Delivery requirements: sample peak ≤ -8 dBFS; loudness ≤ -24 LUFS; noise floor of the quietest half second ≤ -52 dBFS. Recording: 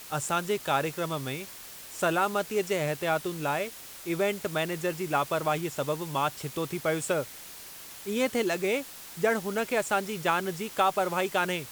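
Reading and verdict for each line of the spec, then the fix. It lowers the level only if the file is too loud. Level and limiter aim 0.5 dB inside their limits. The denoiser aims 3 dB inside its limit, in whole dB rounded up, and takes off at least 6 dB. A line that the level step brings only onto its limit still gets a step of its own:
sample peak -10.5 dBFS: pass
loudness -29.0 LUFS: pass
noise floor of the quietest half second -45 dBFS: fail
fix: noise reduction 10 dB, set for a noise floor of -45 dBFS

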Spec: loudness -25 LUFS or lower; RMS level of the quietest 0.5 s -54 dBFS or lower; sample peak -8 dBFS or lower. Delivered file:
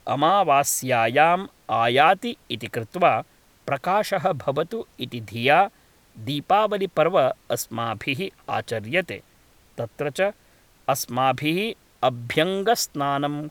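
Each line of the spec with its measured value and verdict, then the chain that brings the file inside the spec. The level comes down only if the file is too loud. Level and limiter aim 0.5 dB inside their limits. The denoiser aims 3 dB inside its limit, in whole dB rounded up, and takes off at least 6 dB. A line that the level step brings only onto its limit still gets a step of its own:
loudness -23.0 LUFS: fail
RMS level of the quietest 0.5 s -57 dBFS: pass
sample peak -4.5 dBFS: fail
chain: trim -2.5 dB; peak limiter -8.5 dBFS

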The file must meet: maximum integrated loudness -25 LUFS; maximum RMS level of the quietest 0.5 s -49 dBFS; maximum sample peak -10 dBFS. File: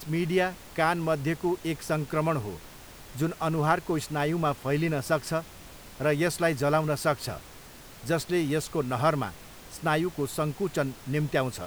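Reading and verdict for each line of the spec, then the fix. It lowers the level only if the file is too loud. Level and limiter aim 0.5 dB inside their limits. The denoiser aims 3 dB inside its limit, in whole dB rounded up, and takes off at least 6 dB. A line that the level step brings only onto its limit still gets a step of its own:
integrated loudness -28.0 LUFS: pass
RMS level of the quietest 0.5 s -47 dBFS: fail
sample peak -9.0 dBFS: fail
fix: noise reduction 6 dB, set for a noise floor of -47 dBFS; peak limiter -10.5 dBFS

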